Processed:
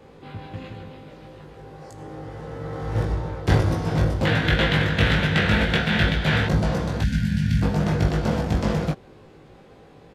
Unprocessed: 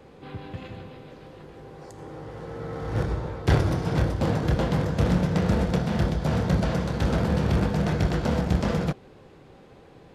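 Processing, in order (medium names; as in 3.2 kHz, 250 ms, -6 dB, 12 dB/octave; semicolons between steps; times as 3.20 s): 4.25–6.47 s: high-order bell 2.4 kHz +14.5 dB; 7.02–7.62 s: time-frequency box 260–1400 Hz -26 dB; doubling 19 ms -3 dB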